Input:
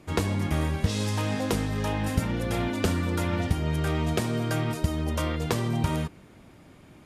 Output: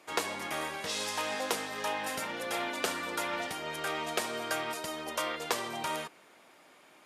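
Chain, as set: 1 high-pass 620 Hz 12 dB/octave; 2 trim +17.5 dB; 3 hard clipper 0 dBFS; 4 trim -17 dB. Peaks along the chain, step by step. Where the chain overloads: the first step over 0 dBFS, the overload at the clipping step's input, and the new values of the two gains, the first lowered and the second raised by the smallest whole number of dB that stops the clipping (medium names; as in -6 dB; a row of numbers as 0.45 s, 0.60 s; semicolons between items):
-13.5 dBFS, +4.0 dBFS, 0.0 dBFS, -17.0 dBFS; step 2, 4.0 dB; step 2 +13.5 dB, step 4 -13 dB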